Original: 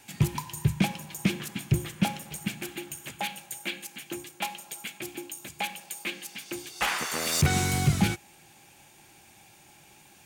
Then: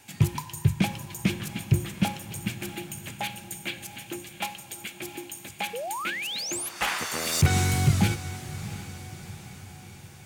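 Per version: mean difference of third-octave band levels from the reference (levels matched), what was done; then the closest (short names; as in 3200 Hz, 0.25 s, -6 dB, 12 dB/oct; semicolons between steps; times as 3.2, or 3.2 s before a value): 4.0 dB: bell 98 Hz +8 dB 0.39 oct; painted sound rise, 5.73–6.69, 440–12000 Hz -33 dBFS; diffused feedback echo 0.721 s, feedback 54%, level -14 dB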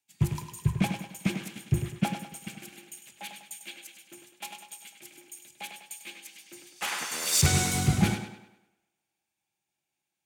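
8.5 dB: dynamic EQ 8200 Hz, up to +4 dB, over -49 dBFS, Q 0.82; on a send: tape echo 0.102 s, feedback 74%, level -4 dB, low-pass 5700 Hz; on the sum: three-band expander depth 100%; gain -7.5 dB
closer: first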